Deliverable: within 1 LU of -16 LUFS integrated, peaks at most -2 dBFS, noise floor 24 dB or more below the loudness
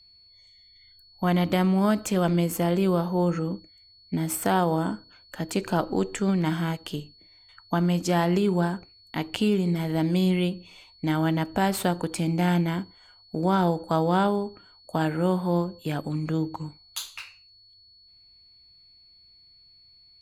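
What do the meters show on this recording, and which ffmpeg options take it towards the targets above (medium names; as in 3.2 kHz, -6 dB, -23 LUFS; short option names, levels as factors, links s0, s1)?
steady tone 4.4 kHz; tone level -53 dBFS; loudness -26.0 LUFS; peak level -10.5 dBFS; loudness target -16.0 LUFS
-> -af "bandreject=f=4400:w=30"
-af "volume=3.16,alimiter=limit=0.794:level=0:latency=1"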